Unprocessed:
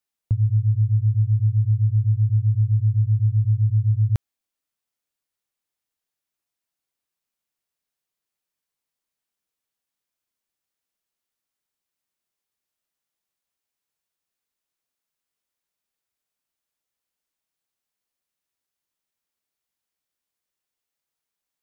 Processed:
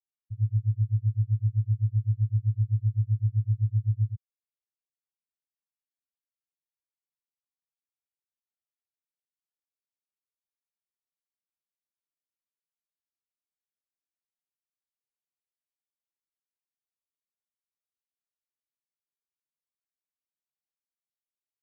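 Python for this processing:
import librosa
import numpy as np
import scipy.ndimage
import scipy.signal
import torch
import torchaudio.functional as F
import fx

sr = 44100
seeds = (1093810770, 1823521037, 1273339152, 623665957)

y = fx.spectral_expand(x, sr, expansion=4.0)
y = y * librosa.db_to_amplitude(-4.5)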